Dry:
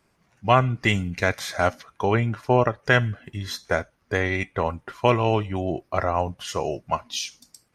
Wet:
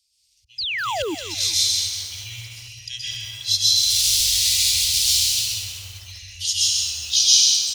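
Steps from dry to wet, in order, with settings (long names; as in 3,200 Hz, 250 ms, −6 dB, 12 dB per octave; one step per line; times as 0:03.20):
0:03.76–0:05.27: sign of each sample alone
in parallel at +1 dB: brickwall limiter −14.5 dBFS, peak gain reduction 11 dB
on the sum: speech leveller within 5 dB 0.5 s
meter weighting curve D
on a send: single-tap delay 130 ms −5 dB
on the sum: dense smooth reverb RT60 2.1 s, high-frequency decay 0.45×, pre-delay 110 ms, DRR −8 dB
volume swells 374 ms
inverse Chebyshev band-stop filter 200–1,400 Hz, stop band 60 dB
0:00.58–0:01.15: sound drawn into the spectrogram fall 280–5,200 Hz −21 dBFS
feedback echo at a low word length 199 ms, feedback 55%, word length 5 bits, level −10.5 dB
level −4.5 dB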